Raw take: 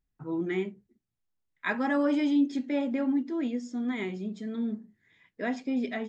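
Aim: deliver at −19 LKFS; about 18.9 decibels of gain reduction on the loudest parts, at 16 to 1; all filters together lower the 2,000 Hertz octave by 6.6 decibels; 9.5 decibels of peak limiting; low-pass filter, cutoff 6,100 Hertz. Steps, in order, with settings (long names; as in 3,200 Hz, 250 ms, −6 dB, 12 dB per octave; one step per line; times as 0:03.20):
low-pass filter 6,100 Hz
parametric band 2,000 Hz −8 dB
downward compressor 16 to 1, threshold −40 dBFS
level +26.5 dB
brickwall limiter −11 dBFS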